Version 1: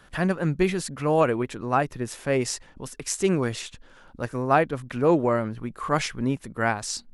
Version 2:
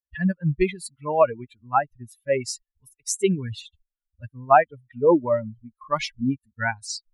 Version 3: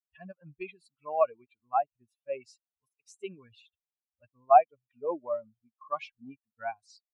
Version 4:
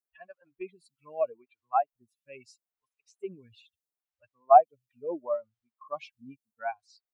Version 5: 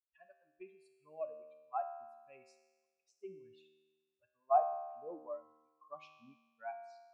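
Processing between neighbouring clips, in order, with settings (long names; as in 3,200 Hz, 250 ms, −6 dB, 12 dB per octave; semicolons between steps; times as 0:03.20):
spectral dynamics exaggerated over time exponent 3; dynamic equaliser 740 Hz, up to +4 dB, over −39 dBFS, Q 1.3; level +5.5 dB
formant filter a
phaser with staggered stages 0.77 Hz; level +2.5 dB
tuned comb filter 77 Hz, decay 1.3 s, harmonics all, mix 80%; level −1 dB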